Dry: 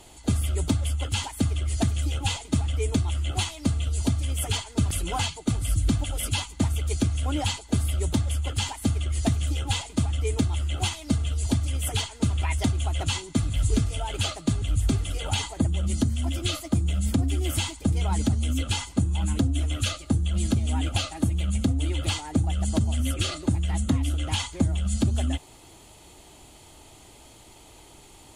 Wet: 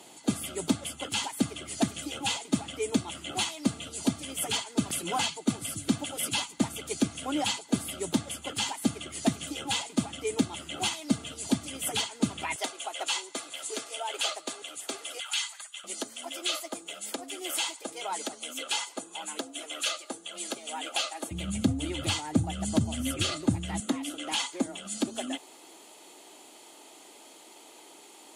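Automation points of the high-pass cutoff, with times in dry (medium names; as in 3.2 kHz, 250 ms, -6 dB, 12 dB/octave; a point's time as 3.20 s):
high-pass 24 dB/octave
170 Hz
from 12.56 s 440 Hz
from 15.20 s 1.3 kHz
from 15.84 s 420 Hz
from 21.31 s 110 Hz
from 23.80 s 270 Hz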